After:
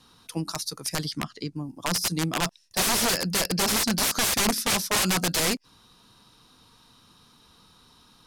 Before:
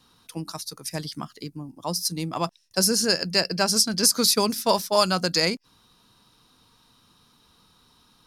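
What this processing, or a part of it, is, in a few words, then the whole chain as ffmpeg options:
overflowing digital effects unit: -filter_complex "[0:a]asettb=1/sr,asplit=3[link_01][link_02][link_03];[link_01]atrim=end=1.124[link_04];[link_02]atrim=start=1.12:end=1.56,asetpts=PTS-STARTPTS,afade=type=in:duration=0.004:curve=qsin,afade=type=out:start_time=0.436:duration=0.004:curve=qsin,lowpass=6500[link_05];[link_03]atrim=start=1.556[link_06];[link_04][link_05]acrossfade=duration=0.004:curve1=hsin:curve2=qsin[link_07];[link_07][link_06]acrossfade=duration=0.004:curve1=qsin:curve2=hsin,aeval=exprs='(mod(10*val(0)+1,2)-1)/10':channel_layout=same,lowpass=13000,volume=3dB"

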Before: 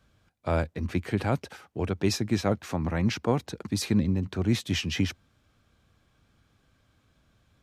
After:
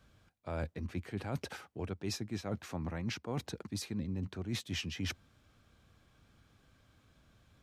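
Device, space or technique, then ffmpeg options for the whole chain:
compression on the reversed sound: -af "areverse,acompressor=threshold=-35dB:ratio=6,areverse"

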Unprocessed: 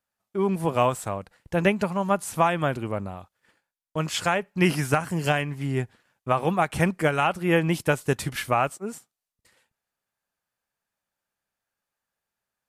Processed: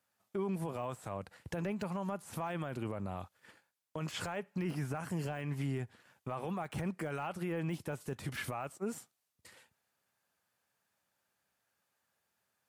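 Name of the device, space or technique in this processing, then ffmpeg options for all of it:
podcast mastering chain: -af "highpass=frequency=72:width=0.5412,highpass=frequency=72:width=1.3066,deesser=0.95,acompressor=threshold=-37dB:ratio=4,alimiter=level_in=8.5dB:limit=-24dB:level=0:latency=1:release=15,volume=-8.5dB,volume=4.5dB" -ar 44100 -c:a libmp3lame -b:a 112k

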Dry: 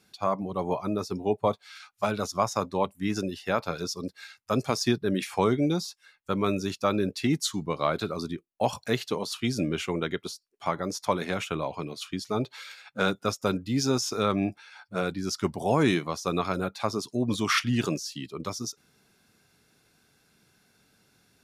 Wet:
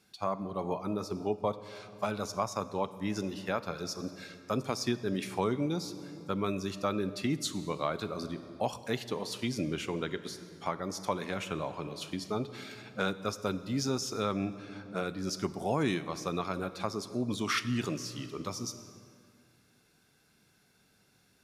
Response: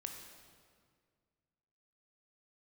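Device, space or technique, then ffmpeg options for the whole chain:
ducked reverb: -filter_complex "[0:a]asplit=3[link_01][link_02][link_03];[1:a]atrim=start_sample=2205[link_04];[link_02][link_04]afir=irnorm=-1:irlink=0[link_05];[link_03]apad=whole_len=945422[link_06];[link_05][link_06]sidechaincompress=threshold=-27dB:ratio=8:attack=16:release=822,volume=4dB[link_07];[link_01][link_07]amix=inputs=2:normalize=0,volume=-9dB"

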